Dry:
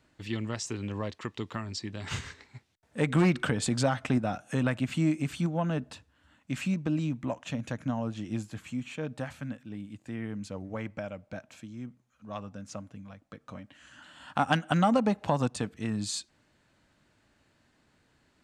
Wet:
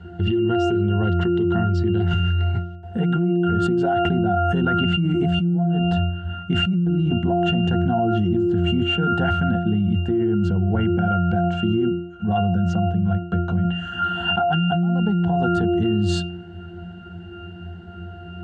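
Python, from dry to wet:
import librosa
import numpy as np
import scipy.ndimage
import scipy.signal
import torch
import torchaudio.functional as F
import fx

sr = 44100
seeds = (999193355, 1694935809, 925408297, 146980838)

y = fx.octave_resonator(x, sr, note='F', decay_s=0.64)
y = fx.env_flatten(y, sr, amount_pct=100)
y = F.gain(torch.from_numpy(y), 8.5).numpy()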